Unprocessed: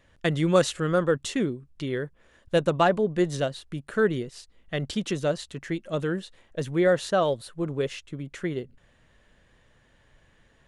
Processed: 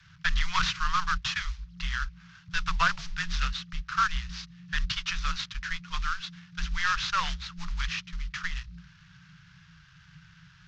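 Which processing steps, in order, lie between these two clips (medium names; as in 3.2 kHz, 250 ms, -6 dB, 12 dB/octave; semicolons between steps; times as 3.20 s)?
CVSD coder 32 kbps; Chebyshev band-stop 140–1400 Hz, order 3; de-hum 124.1 Hz, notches 6; frequency shift -180 Hz; loudspeaker Doppler distortion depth 0.33 ms; trim +7 dB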